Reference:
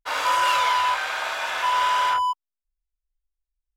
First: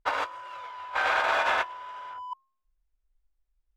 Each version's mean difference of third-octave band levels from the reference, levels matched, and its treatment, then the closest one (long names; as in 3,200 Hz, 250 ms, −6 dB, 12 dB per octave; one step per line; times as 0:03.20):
10.0 dB: low-pass filter 1,200 Hz 6 dB per octave
compressor whose output falls as the input rises −32 dBFS, ratio −0.5
hum removal 356.9 Hz, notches 3
level +2 dB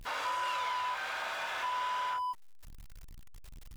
3.0 dB: converter with a step at zero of −32.5 dBFS
high-shelf EQ 6,300 Hz −6 dB
downward compressor 2 to 1, threshold −28 dBFS, peak gain reduction 6.5 dB
level −8 dB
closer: second